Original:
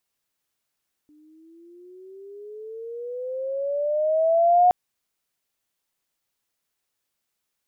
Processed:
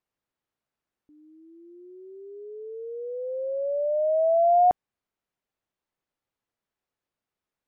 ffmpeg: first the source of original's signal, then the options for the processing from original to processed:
-f lavfi -i "aevalsrc='pow(10,(-12+39.5*(t/3.62-1))/20)*sin(2*PI*297*3.62/(15.5*log(2)/12)*(exp(15.5*log(2)/12*t/3.62)-1))':d=3.62:s=44100"
-af "lowpass=f=1100:p=1"

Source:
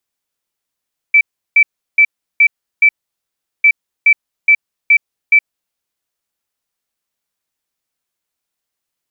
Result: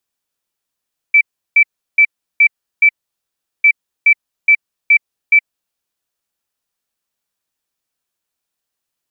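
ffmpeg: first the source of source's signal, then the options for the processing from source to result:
-f lavfi -i "aevalsrc='0.596*sin(2*PI*2320*t)*clip(min(mod(mod(t,2.5),0.42),0.07-mod(mod(t,2.5),0.42))/0.005,0,1)*lt(mod(t,2.5),2.1)':d=5:s=44100"
-af "bandreject=f=2100:w=17"

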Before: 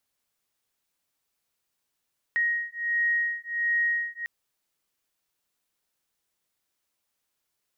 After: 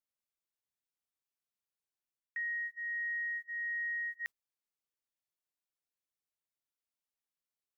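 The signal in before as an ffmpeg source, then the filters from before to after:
-f lavfi -i "aevalsrc='0.0447*(sin(2*PI*1880*t)+sin(2*PI*1881.4*t))':d=1.9:s=44100"
-af "agate=range=0.141:threshold=0.0126:ratio=16:detection=peak,areverse,acompressor=threshold=0.0141:ratio=5,areverse"

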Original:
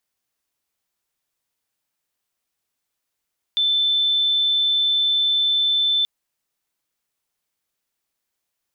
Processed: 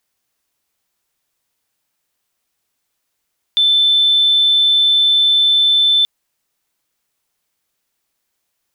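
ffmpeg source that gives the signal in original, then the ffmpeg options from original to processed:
-f lavfi -i "aevalsrc='0.158*sin(2*PI*3530*t)':d=2.48:s=44100"
-af "acontrast=87"

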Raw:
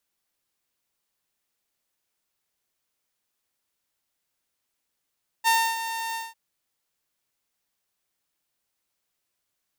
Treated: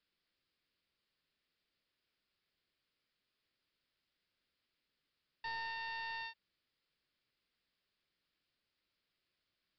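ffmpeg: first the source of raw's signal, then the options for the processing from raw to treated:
-f lavfi -i "aevalsrc='0.188*(2*mod(909*t,1)-1)':d=0.899:s=44100,afade=t=in:d=0.036,afade=t=out:st=0.036:d=0.282:silence=0.266,afade=t=out:st=0.71:d=0.189"
-af "equalizer=f=830:t=o:w=0.83:g=-10,acompressor=threshold=0.0251:ratio=2,aresample=11025,asoftclip=type=hard:threshold=0.0126,aresample=44100"

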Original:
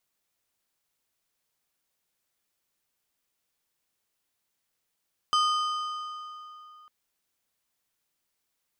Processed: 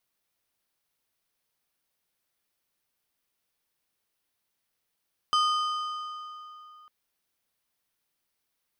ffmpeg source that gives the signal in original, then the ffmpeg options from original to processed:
-f lavfi -i "aevalsrc='0.0944*pow(10,-3*t/3.1)*sin(2*PI*1230*t)+0.0473*pow(10,-3*t/2.355)*sin(2*PI*3075*t)+0.0237*pow(10,-3*t/2.045)*sin(2*PI*4920*t)+0.0119*pow(10,-3*t/1.913)*sin(2*PI*6150*t)+0.00596*pow(10,-3*t/1.768)*sin(2*PI*7995*t)+0.00299*pow(10,-3*t/1.631)*sin(2*PI*10455*t)':d=1.55:s=44100"
-af "equalizer=f=7200:w=3.8:g=-6"

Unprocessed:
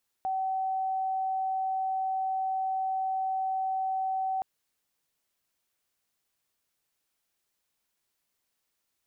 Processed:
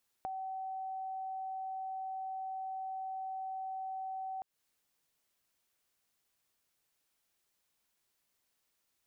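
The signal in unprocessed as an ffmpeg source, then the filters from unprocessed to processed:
-f lavfi -i "sine=f=762:d=4.17:r=44100,volume=-8.94dB"
-af "acompressor=threshold=0.01:ratio=6"

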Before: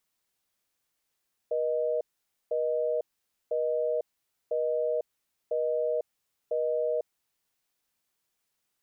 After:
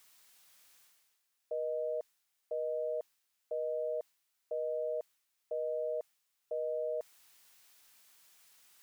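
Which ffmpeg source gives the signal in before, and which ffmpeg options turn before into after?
-f lavfi -i "aevalsrc='0.0398*(sin(2*PI*480*t)+sin(2*PI*620*t))*clip(min(mod(t,1),0.5-mod(t,1))/0.005,0,1)':d=5.76:s=44100"
-af "equalizer=f=440:t=o:w=2.2:g=-4.5,areverse,acompressor=mode=upward:threshold=0.00398:ratio=2.5,areverse,lowshelf=f=330:g=-11.5"

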